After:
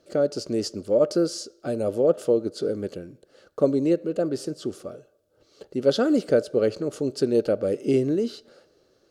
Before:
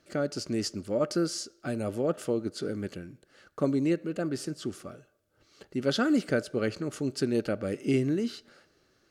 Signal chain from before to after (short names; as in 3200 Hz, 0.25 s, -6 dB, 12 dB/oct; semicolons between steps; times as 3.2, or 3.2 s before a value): graphic EQ 500/2000/4000 Hz +11/-6/+3 dB